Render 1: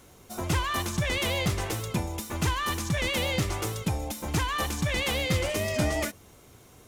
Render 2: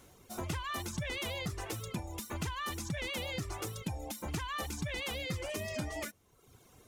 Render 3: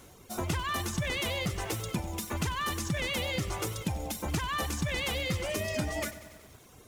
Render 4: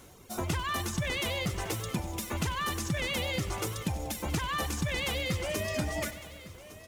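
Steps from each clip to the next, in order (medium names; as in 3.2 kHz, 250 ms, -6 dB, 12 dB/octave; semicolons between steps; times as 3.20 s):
compression, threshold -28 dBFS, peak gain reduction 7 dB; reverb removal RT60 0.93 s; trim -4.5 dB
bit-crushed delay 94 ms, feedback 80%, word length 9-bit, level -15 dB; trim +5.5 dB
delay 1157 ms -17 dB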